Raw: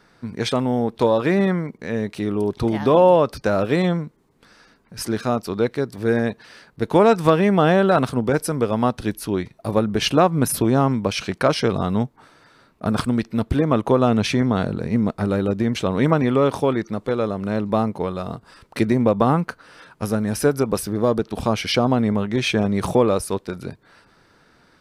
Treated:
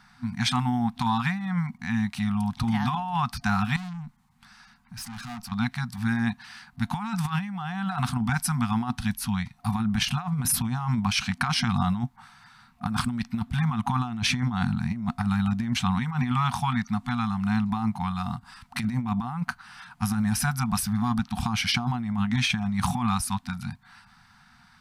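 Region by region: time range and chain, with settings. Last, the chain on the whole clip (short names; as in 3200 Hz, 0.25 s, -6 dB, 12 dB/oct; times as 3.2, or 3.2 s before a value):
3.76–5.52 tube stage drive 30 dB, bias 0.35 + compressor 2:1, threshold -37 dBFS
whole clip: FFT band-reject 250–700 Hz; negative-ratio compressor -23 dBFS, ratio -0.5; gain -1.5 dB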